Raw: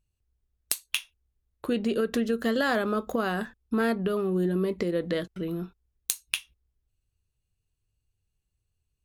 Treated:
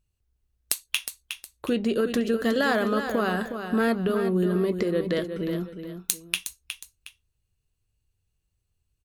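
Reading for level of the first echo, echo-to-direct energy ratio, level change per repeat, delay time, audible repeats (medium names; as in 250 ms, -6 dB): -8.5 dB, -8.0 dB, -9.5 dB, 363 ms, 2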